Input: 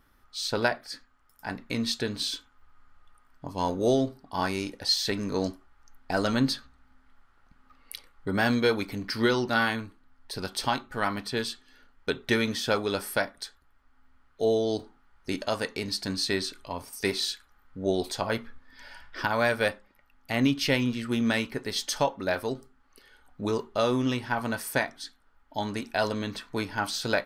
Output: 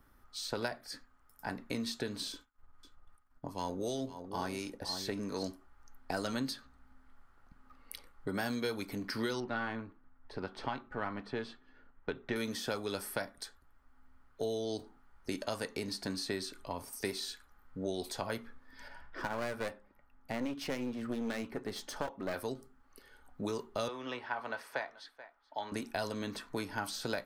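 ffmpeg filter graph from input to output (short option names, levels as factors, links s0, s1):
-filter_complex "[0:a]asettb=1/sr,asplit=3[s0][s1][s2];[s0]atrim=end=2.324[s3];[s1]atrim=start=2.32:end=5.43,asetpts=PTS-STARTPTS,afade=t=in:d=0.004:c=qsin,afade=t=out:st=3.106:d=0.004:c=qsin,agate=range=0.0224:threshold=0.00251:ratio=3:release=100:detection=peak,acrossover=split=1100[s4][s5];[s4]aeval=exprs='val(0)*(1-0.5/2+0.5/2*cos(2*PI*2.8*n/s))':c=same[s6];[s5]aeval=exprs='val(0)*(1-0.5/2-0.5/2*cos(2*PI*2.8*n/s))':c=same[s7];[s6][s7]amix=inputs=2:normalize=0,aecho=1:1:510:0.2,atrim=end_sample=137151[s8];[s2]atrim=start=5.426[s9];[s3][s8]acrossfade=d=0.004:c1=hsin:c2=qsin[s10];[s10][s9]acrossfade=d=0.004:c1=qsin:c2=hsin,asettb=1/sr,asplit=3[s11][s12][s13];[s11]atrim=end=9.404[s14];[s12]atrim=start=9.4:end=12.36,asetpts=PTS-STARTPTS,afade=t=in:d=0.004:c=qsin,afade=t=out:st=2.956:d=0.004:c=qsin,aeval=exprs='if(lt(val(0),0),0.708*val(0),val(0))':c=same,lowpass=2400[s15];[s13]atrim=start=12.356[s16];[s14][s15]acrossfade=d=0.004:c1=hsin:c2=qsin[s17];[s17][s16]acrossfade=d=0.004:c1=qsin:c2=hsin,asettb=1/sr,asplit=3[s18][s19][s20];[s18]atrim=end=18.884[s21];[s19]atrim=start=18.88:end=22.34,asetpts=PTS-STARTPTS,afade=t=in:d=0.004:c=qsin,afade=t=out:st=3.456:d=0.004:c=qsin,highshelf=f=2900:g=-11,aeval=exprs='clip(val(0),-1,0.02)':c=same[s22];[s20]atrim=start=22.336[s23];[s21][s22]acrossfade=d=0.004:c1=hsin:c2=qsin[s24];[s24][s23]acrossfade=d=0.004:c1=qsin:c2=hsin,asettb=1/sr,asplit=3[s25][s26][s27];[s25]atrim=end=23.884[s28];[s26]atrim=start=23.88:end=25.72,asetpts=PTS-STARTPTS,afade=t=in:d=0.004:c=qsin,afade=t=out:st=1.836:d=0.004:c=qsin,acrossover=split=450 4200:gain=0.0708 1 0.0631[s29][s30][s31];[s29][s30][s31]amix=inputs=3:normalize=0,aecho=1:1:431:0.0794,atrim=end_sample=81144[s32];[s27]atrim=start=25.716[s33];[s28][s32]acrossfade=d=0.004:c1=hsin:c2=qsin[s34];[s34][s33]acrossfade=d=0.004:c1=qsin:c2=hsin,equalizer=f=3300:w=0.63:g=-6.5,acrossover=split=200|1800|4000[s35][s36][s37][s38];[s35]acompressor=threshold=0.00398:ratio=4[s39];[s36]acompressor=threshold=0.0158:ratio=4[s40];[s37]acompressor=threshold=0.00562:ratio=4[s41];[s38]acompressor=threshold=0.00708:ratio=4[s42];[s39][s40][s41][s42]amix=inputs=4:normalize=0"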